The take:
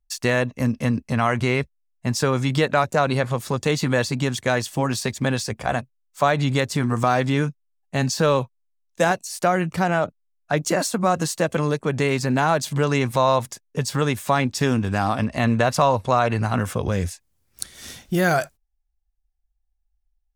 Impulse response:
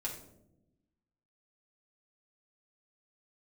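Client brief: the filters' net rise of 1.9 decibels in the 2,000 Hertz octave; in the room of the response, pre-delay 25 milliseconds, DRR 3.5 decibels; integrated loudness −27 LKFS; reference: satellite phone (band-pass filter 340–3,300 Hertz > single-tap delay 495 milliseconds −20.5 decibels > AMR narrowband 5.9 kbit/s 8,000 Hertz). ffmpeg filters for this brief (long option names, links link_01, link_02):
-filter_complex "[0:a]equalizer=frequency=2000:width_type=o:gain=3,asplit=2[link_01][link_02];[1:a]atrim=start_sample=2205,adelay=25[link_03];[link_02][link_03]afir=irnorm=-1:irlink=0,volume=-4dB[link_04];[link_01][link_04]amix=inputs=2:normalize=0,highpass=340,lowpass=3300,aecho=1:1:495:0.0944,volume=-3dB" -ar 8000 -c:a libopencore_amrnb -b:a 5900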